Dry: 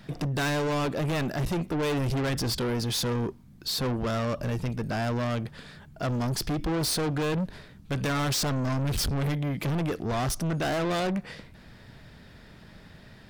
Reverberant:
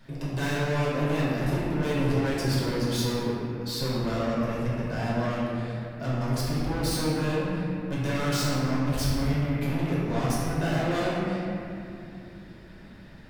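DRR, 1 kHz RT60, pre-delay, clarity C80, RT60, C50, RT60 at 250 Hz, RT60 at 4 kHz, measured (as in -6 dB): -8.0 dB, 2.6 s, 3 ms, -0.5 dB, 2.8 s, -2.5 dB, 4.4 s, 1.7 s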